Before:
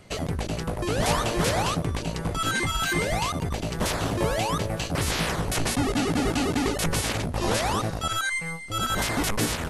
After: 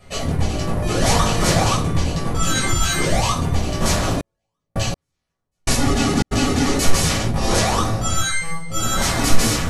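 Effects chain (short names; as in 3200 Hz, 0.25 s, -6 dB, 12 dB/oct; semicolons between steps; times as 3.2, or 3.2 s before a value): shoebox room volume 430 m³, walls furnished, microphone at 6 m; dynamic EQ 6500 Hz, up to +7 dB, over -37 dBFS, Q 0.89; 4.11–6.31 step gate "x....xxx.x..." 82 bpm -60 dB; gain -4.5 dB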